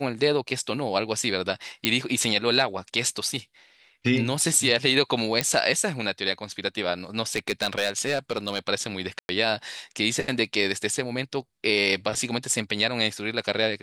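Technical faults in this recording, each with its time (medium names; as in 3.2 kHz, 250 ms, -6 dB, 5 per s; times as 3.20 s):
1.85 s: pop -4 dBFS
5.41 s: pop -6 dBFS
7.35–8.59 s: clipped -18 dBFS
9.19–9.29 s: dropout 101 ms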